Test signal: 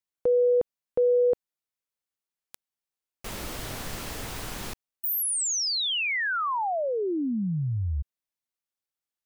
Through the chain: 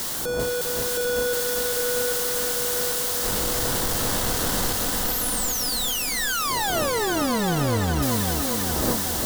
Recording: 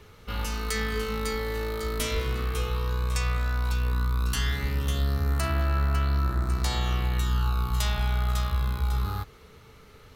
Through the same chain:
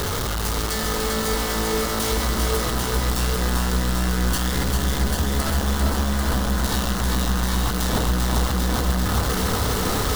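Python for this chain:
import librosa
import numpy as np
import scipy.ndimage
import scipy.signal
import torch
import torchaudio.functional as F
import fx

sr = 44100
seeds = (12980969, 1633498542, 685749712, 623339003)

y = np.sign(x) * np.sqrt(np.mean(np.square(x)))
y = fx.dmg_wind(y, sr, seeds[0], corner_hz=540.0, level_db=-41.0)
y = fx.peak_eq(y, sr, hz=2400.0, db=-10.0, octaves=0.44)
y = fx.rider(y, sr, range_db=10, speed_s=0.5)
y = fx.echo_feedback(y, sr, ms=395, feedback_pct=60, wet_db=-4)
y = fx.echo_crushed(y, sr, ms=794, feedback_pct=55, bits=7, wet_db=-5.0)
y = y * librosa.db_to_amplitude(2.5)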